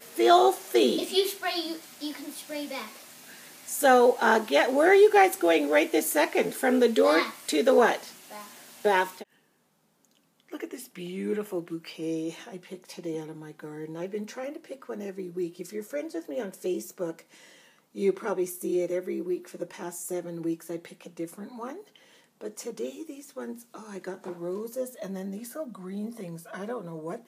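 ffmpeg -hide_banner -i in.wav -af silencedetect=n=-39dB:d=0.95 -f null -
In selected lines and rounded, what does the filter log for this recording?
silence_start: 9.23
silence_end: 10.53 | silence_duration: 1.30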